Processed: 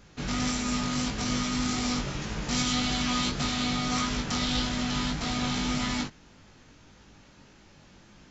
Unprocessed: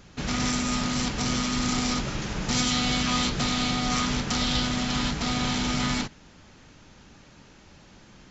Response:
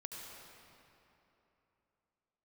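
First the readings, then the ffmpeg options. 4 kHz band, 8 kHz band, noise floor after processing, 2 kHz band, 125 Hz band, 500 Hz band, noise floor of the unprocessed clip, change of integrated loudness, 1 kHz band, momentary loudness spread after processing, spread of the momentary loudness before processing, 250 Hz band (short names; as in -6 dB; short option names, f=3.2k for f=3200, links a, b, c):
-3.0 dB, n/a, -55 dBFS, -3.0 dB, -3.0 dB, -3.0 dB, -53 dBFS, -2.5 dB, -3.0 dB, 4 LU, 4 LU, -2.0 dB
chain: -af "flanger=delay=19:depth=2.1:speed=1.7"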